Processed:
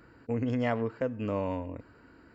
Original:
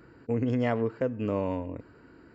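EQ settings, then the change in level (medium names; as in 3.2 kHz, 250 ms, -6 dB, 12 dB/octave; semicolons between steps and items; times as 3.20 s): peaking EQ 150 Hz -4.5 dB 0.77 oct; peaking EQ 380 Hz -5.5 dB 0.67 oct; 0.0 dB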